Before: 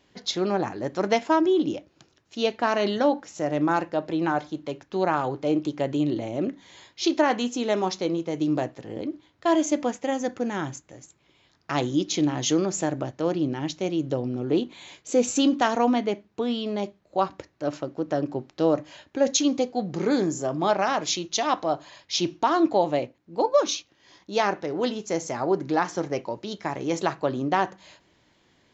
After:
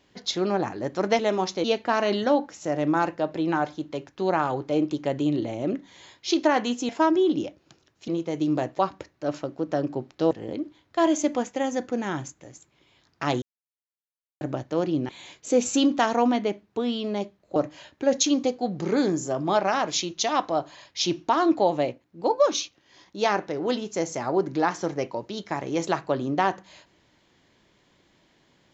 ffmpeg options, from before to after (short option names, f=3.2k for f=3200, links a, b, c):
-filter_complex "[0:a]asplit=11[a][b][c][d][e][f][g][h][i][j][k];[a]atrim=end=1.192[l];[b]atrim=start=7.628:end=8.082[m];[c]atrim=start=2.378:end=7.632[n];[d]atrim=start=1.188:end=2.382[o];[e]atrim=start=8.078:end=8.792[p];[f]atrim=start=17.178:end=18.702[q];[g]atrim=start=8.788:end=11.9,asetpts=PTS-STARTPTS,afade=t=out:st=3.108:d=0.004:c=hsin[r];[h]atrim=start=11.9:end=12.89,asetpts=PTS-STARTPTS,volume=0[s];[i]atrim=start=12.89:end=13.572,asetpts=PTS-STARTPTS,afade=t=in:d=0.004:c=hsin[t];[j]atrim=start=14.708:end=17.182[u];[k]atrim=start=18.698[v];[l][m]acrossfade=d=0.004:c1=hsin:c2=hsin[w];[w][n]acrossfade=d=0.004:c1=hsin:c2=hsin[x];[x][o]acrossfade=d=0.004:c1=hsin:c2=hsin[y];[y][p]acrossfade=d=0.004:c1=hsin:c2=hsin[z];[z][q]acrossfade=d=0.004:c1=hsin:c2=hsin[aa];[r][s][t]concat=n=3:v=0:a=1[ab];[aa][ab]acrossfade=d=0.004:c1=hsin:c2=hsin[ac];[ac][u]acrossfade=d=0.004:c1=hsin:c2=hsin[ad];[ad][v]acrossfade=d=0.004:c1=hsin:c2=hsin"